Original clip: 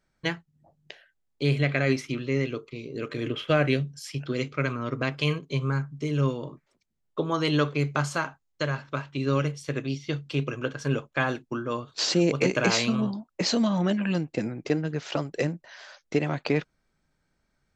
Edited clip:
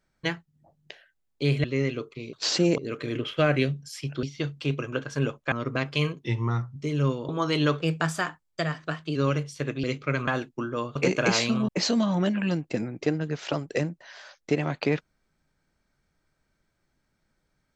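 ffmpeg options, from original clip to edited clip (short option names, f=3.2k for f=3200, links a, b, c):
-filter_complex "[0:a]asplit=15[a][b][c][d][e][f][g][h][i][j][k][l][m][n][o];[a]atrim=end=1.642[p];[b]atrim=start=2.198:end=2.892[q];[c]atrim=start=11.888:end=12.342[r];[d]atrim=start=2.888:end=4.342[s];[e]atrim=start=9.918:end=11.212[t];[f]atrim=start=4.778:end=5.474[u];[g]atrim=start=5.47:end=5.94,asetpts=PTS-STARTPTS,asetrate=37926,aresample=44100,atrim=end_sample=24101,asetpts=PTS-STARTPTS[v];[h]atrim=start=5.936:end=6.472[w];[i]atrim=start=7.208:end=7.734[x];[j]atrim=start=7.73:end=9.24,asetpts=PTS-STARTPTS,asetrate=49392,aresample=44100,atrim=end_sample=59456,asetpts=PTS-STARTPTS[y];[k]atrim=start=9.236:end=9.922[z];[l]atrim=start=4.338:end=4.782[aa];[m]atrim=start=11.208:end=11.892[ab];[n]atrim=start=12.338:end=13.072[ac];[o]atrim=start=13.318[ad];[p][q]acrossfade=d=0.004:c1=hsin:c2=hsin[ae];[ae][r]acrossfade=d=0.004:c1=hsin:c2=hsin[af];[af][s]acrossfade=d=0.004:c1=hsin:c2=hsin[ag];[ag][t]acrossfade=d=0.004:c1=hsin:c2=hsin[ah];[ah][u]acrossfade=d=0.004:c1=hsin:c2=hsin[ai];[ai][v]acrossfade=d=0.004:c1=hsin:c2=hsin[aj];[aj][w]acrossfade=d=0.004:c1=hsin:c2=hsin[ak];[ak][x]acrossfade=d=0.004:c1=hsin:c2=hsin[al];[al][y]acrossfade=d=0.004:c1=hsin:c2=hsin[am];[am][z]acrossfade=d=0.004:c1=hsin:c2=hsin[an];[an][aa]acrossfade=d=0.004:c1=hsin:c2=hsin[ao];[ao][ab]acrossfade=d=0.004:c1=hsin:c2=hsin[ap];[ap][ac]acrossfade=d=0.004:c1=hsin:c2=hsin[aq];[aq][ad]acrossfade=d=0.004:c1=hsin:c2=hsin"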